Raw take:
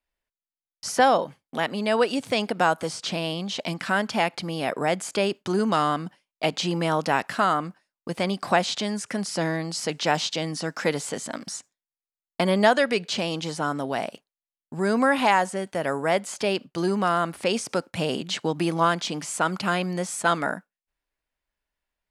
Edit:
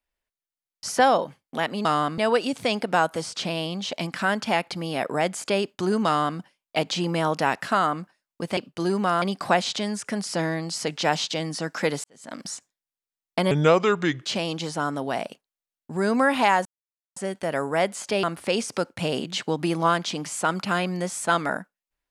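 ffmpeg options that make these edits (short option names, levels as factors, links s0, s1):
-filter_complex "[0:a]asplit=10[s0][s1][s2][s3][s4][s5][s6][s7][s8][s9];[s0]atrim=end=1.852[s10];[s1]atrim=start=5.728:end=6.062[s11];[s2]atrim=start=1.848:end=8.242[s12];[s3]atrim=start=16.548:end=17.202[s13];[s4]atrim=start=8.238:end=11.06,asetpts=PTS-STARTPTS,afade=t=out:st=2.818:d=0.004:c=hsin[s14];[s5]atrim=start=11.06:end=12.534,asetpts=PTS-STARTPTS,afade=t=in:d=0.35:c=qua[s15];[s6]atrim=start=12.53:end=13.08,asetpts=PTS-STARTPTS,asetrate=32634,aresample=44100,atrim=end_sample=32777,asetpts=PTS-STARTPTS[s16];[s7]atrim=start=13.076:end=15.48,asetpts=PTS-STARTPTS,afade=t=out:st=2.4:d=0.004:c=hsin,apad=pad_dur=0.51[s17];[s8]atrim=start=15.48:end=16.552,asetpts=PTS-STARTPTS,afade=t=in:d=0.004:c=hsin[s18];[s9]atrim=start=17.198[s19];[s10][s11]acrossfade=d=0.004:c1=hsin:c2=hsin[s20];[s20][s12]acrossfade=d=0.004:c1=hsin:c2=hsin[s21];[s21][s13]acrossfade=d=0.004:c1=hsin:c2=hsin[s22];[s14][s15]concat=n=2:v=0:a=1[s23];[s22][s23]acrossfade=d=0.004:c1=hsin:c2=hsin[s24];[s24][s16]acrossfade=d=0.004:c1=hsin:c2=hsin[s25];[s17][s18]concat=n=2:v=0:a=1[s26];[s25][s26]acrossfade=d=0.004:c1=hsin:c2=hsin[s27];[s27][s19]acrossfade=d=0.004:c1=hsin:c2=hsin"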